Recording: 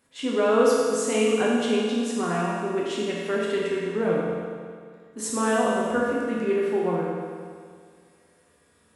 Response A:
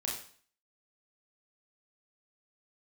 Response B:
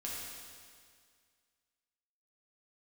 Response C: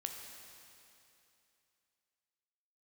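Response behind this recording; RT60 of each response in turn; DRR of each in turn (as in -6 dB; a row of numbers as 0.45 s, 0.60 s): B; 0.50 s, 2.0 s, 2.8 s; -3.0 dB, -5.5 dB, 2.5 dB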